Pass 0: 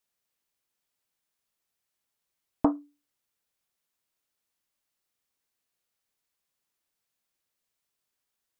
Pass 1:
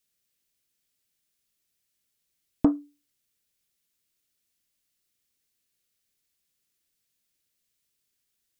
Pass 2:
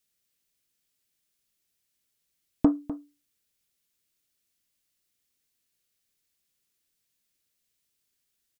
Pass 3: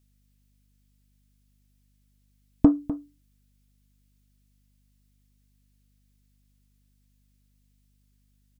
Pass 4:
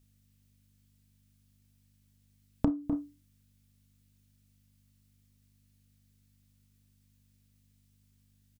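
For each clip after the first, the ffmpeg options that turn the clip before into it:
ffmpeg -i in.wav -af "equalizer=frequency=900:width_type=o:width=1.6:gain=-13.5,volume=6dB" out.wav
ffmpeg -i in.wav -filter_complex "[0:a]asplit=2[link_01][link_02];[link_02]adelay=250.7,volume=-14dB,highshelf=frequency=4000:gain=-5.64[link_03];[link_01][link_03]amix=inputs=2:normalize=0" out.wav
ffmpeg -i in.wav -af "lowshelf=frequency=260:gain=9,aeval=exprs='val(0)+0.000562*(sin(2*PI*50*n/s)+sin(2*PI*2*50*n/s)/2+sin(2*PI*3*50*n/s)/3+sin(2*PI*4*50*n/s)/4+sin(2*PI*5*50*n/s)/5)':channel_layout=same" out.wav
ffmpeg -i in.wav -filter_complex "[0:a]asplit=2[link_01][link_02];[link_02]aecho=0:1:31|53:0.501|0.133[link_03];[link_01][link_03]amix=inputs=2:normalize=0,acompressor=threshold=-24dB:ratio=10" out.wav

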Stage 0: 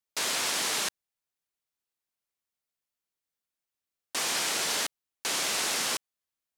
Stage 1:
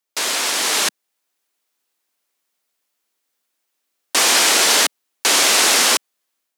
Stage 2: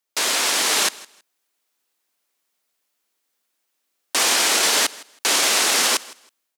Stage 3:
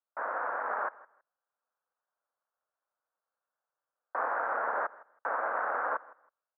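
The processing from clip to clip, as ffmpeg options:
ffmpeg -i in.wav -af "highpass=frequency=220:width=0.5412,highpass=frequency=220:width=1.3066,dynaudnorm=framelen=580:gausssize=3:maxgain=7dB,volume=8dB" out.wav
ffmpeg -i in.wav -af "alimiter=limit=-9dB:level=0:latency=1:release=20,aecho=1:1:161|322:0.0891|0.0187" out.wav
ffmpeg -i in.wav -af "asuperpass=centerf=870:order=12:qfactor=0.82,equalizer=frequency=700:width=0.63:gain=-3,tremolo=f=220:d=0.519" out.wav

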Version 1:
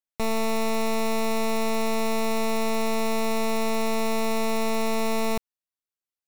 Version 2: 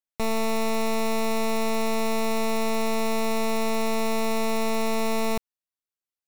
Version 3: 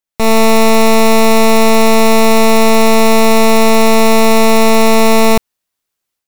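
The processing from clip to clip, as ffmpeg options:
ffmpeg -i in.wav -af anull out.wav
ffmpeg -i in.wav -af "dynaudnorm=framelen=140:gausssize=3:maxgain=11dB,volume=6dB" out.wav

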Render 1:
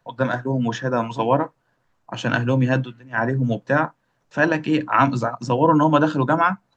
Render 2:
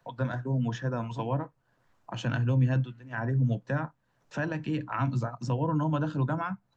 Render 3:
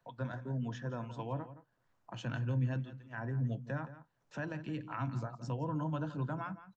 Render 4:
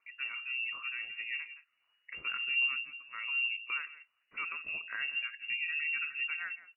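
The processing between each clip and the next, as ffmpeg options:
ffmpeg -i in.wav -filter_complex "[0:a]acrossover=split=150[link_01][link_02];[link_02]acompressor=threshold=-43dB:ratio=2[link_03];[link_01][link_03]amix=inputs=2:normalize=0" out.wav
ffmpeg -i in.wav -filter_complex "[0:a]asplit=2[link_01][link_02];[link_02]adelay=169.1,volume=-14dB,highshelf=frequency=4000:gain=-3.8[link_03];[link_01][link_03]amix=inputs=2:normalize=0,volume=-8.5dB" out.wav
ffmpeg -i in.wav -af "afftfilt=real='re*pow(10,6/40*sin(2*PI*(0.51*log(max(b,1)*sr/1024/100)/log(2)-(-2.7)*(pts-256)/sr)))':imag='im*pow(10,6/40*sin(2*PI*(0.51*log(max(b,1)*sr/1024/100)/log(2)-(-2.7)*(pts-256)/sr)))':win_size=1024:overlap=0.75,lowpass=frequency=2500:width_type=q:width=0.5098,lowpass=frequency=2500:width_type=q:width=0.6013,lowpass=frequency=2500:width_type=q:width=0.9,lowpass=frequency=2500:width_type=q:width=2.563,afreqshift=-2900" out.wav

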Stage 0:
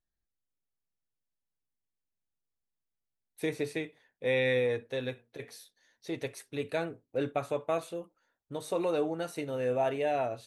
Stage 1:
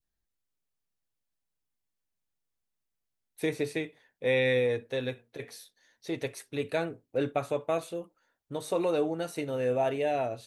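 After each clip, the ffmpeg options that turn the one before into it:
ffmpeg -i in.wav -af "adynamicequalizer=threshold=0.00794:dfrequency=1200:dqfactor=0.87:tfrequency=1200:tqfactor=0.87:attack=5:release=100:ratio=0.375:range=2.5:mode=cutabove:tftype=bell,volume=2.5dB" out.wav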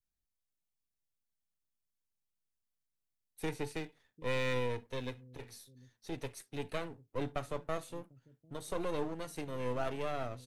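ffmpeg -i in.wav -filter_complex "[0:a]acrossover=split=260|4300[link_01][link_02][link_03];[link_01]aecho=1:1:748:0.211[link_04];[link_02]aeval=exprs='max(val(0),0)':channel_layout=same[link_05];[link_04][link_05][link_03]amix=inputs=3:normalize=0,volume=-4.5dB" out.wav

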